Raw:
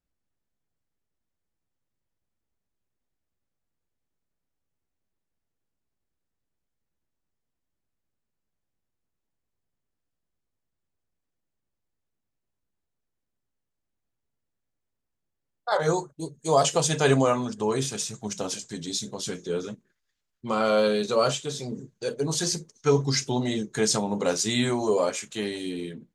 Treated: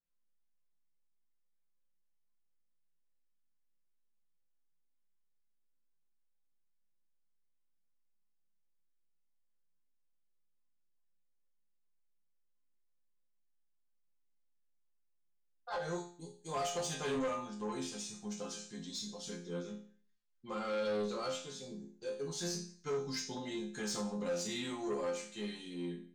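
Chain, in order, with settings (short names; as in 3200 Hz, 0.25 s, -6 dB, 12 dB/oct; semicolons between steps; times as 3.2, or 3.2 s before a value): LPF 8200 Hz 12 dB/oct; notch 630 Hz, Q 12; resonator bank F3 minor, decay 0.45 s; soft clip -38 dBFS, distortion -11 dB; gain +7 dB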